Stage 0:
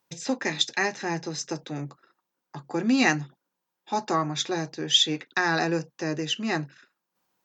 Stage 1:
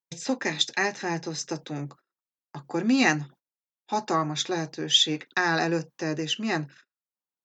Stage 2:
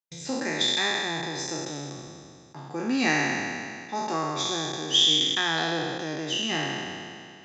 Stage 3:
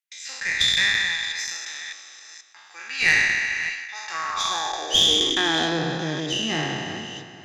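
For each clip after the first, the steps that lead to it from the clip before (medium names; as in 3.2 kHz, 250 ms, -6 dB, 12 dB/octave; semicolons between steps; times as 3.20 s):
gate -49 dBFS, range -25 dB
spectral sustain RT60 2.26 s; trim -6 dB
chunks repeated in reverse 482 ms, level -12 dB; high-pass sweep 2 kHz -> 94 Hz, 4.03–6.30 s; Chebyshev shaper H 4 -21 dB, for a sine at -8 dBFS; trim +2 dB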